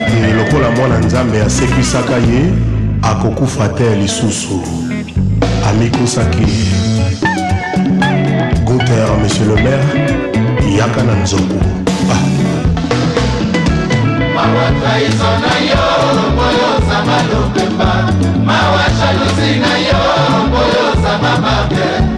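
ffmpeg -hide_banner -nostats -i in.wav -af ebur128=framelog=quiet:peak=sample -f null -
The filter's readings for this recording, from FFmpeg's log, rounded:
Integrated loudness:
  I:         -12.2 LUFS
  Threshold: -22.2 LUFS
Loudness range:
  LRA:         2.2 LU
  Threshold: -32.3 LUFS
  LRA low:   -13.5 LUFS
  LRA high:  -11.4 LUFS
Sample peak:
  Peak:       -4.4 dBFS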